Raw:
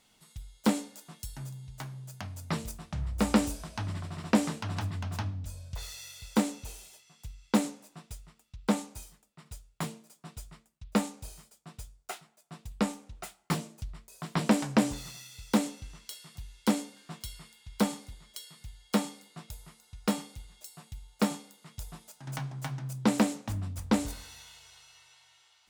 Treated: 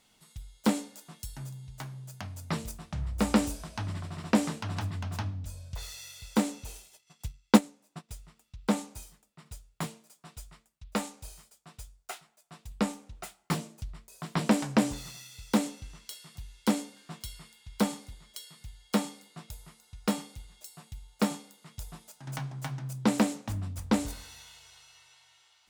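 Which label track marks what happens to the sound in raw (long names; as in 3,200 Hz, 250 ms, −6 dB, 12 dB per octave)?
6.750000	8.090000	transient designer attack +7 dB, sustain −12 dB
9.860000	12.690000	parametric band 210 Hz −6 dB 2.4 octaves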